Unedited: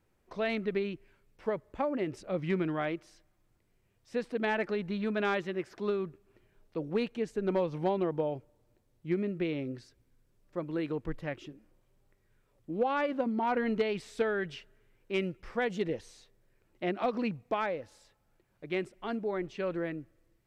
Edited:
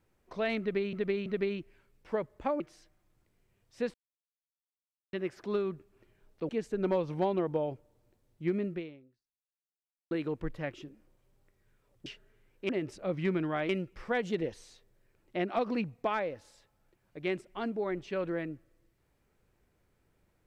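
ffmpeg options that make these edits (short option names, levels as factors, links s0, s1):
-filter_complex "[0:a]asplit=11[s0][s1][s2][s3][s4][s5][s6][s7][s8][s9][s10];[s0]atrim=end=0.932[s11];[s1]atrim=start=0.598:end=0.932[s12];[s2]atrim=start=0.598:end=1.942[s13];[s3]atrim=start=2.938:end=4.28,asetpts=PTS-STARTPTS,afade=t=out:st=1.338:d=0.004:c=hsin[s14];[s4]atrim=start=4.28:end=5.47,asetpts=PTS-STARTPTS,volume=0[s15];[s5]atrim=start=5.47:end=6.832,asetpts=PTS-STARTPTS,afade=t=in:d=0.004:c=hsin[s16];[s6]atrim=start=7.128:end=10.75,asetpts=PTS-STARTPTS,afade=t=out:st=2.222:d=1.4:c=exp[s17];[s7]atrim=start=10.75:end=12.702,asetpts=PTS-STARTPTS,afade=t=in:d=0.004:c=hsin[s18];[s8]atrim=start=14.528:end=15.162[s19];[s9]atrim=start=1.938:end=2.942[s20];[s10]atrim=start=15.158[s21];[s11][s12]acrossfade=d=0.004:c1=hsin:c2=hsin[s22];[s22][s13]acrossfade=d=0.004:c1=hsin:c2=hsin[s23];[s14][s15][s16]concat=n=3:v=0:a=1[s24];[s23][s24]acrossfade=d=0.004:c1=hsin:c2=hsin[s25];[s17][s18]concat=n=2:v=0:a=1[s26];[s25][s26]acrossfade=d=0.004:c1=hsin:c2=hsin[s27];[s27][s19]acrossfade=d=0.004:c1=hsin:c2=hsin[s28];[s28][s20]acrossfade=d=0.004:c1=hsin:c2=hsin[s29];[s29][s21]acrossfade=d=0.004:c1=hsin:c2=hsin"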